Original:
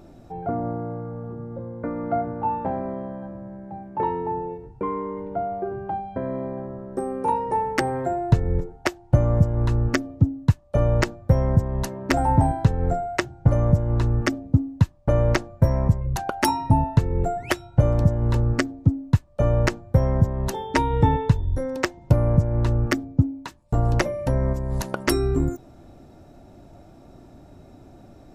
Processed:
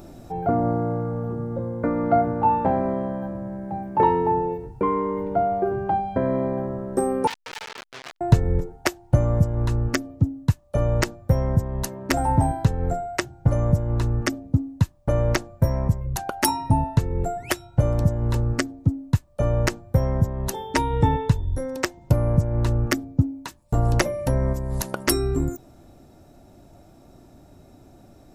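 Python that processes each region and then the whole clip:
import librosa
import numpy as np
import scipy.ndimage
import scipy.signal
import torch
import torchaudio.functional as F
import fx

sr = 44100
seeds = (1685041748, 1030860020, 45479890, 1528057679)

y = fx.chain(x, sr, fx.median_filter(points=25),
    fx.clip_hard(threshold_db=-29.0),
    fx.transformer_sat(knee_hz=2200.0), at=(7.27, 8.21))
y = fx.high_shelf(y, sr, hz=6700.0, db=11.5)
y = fx.rider(y, sr, range_db=10, speed_s=2.0)
y = y * 10.0 ** (-1.0 / 20.0)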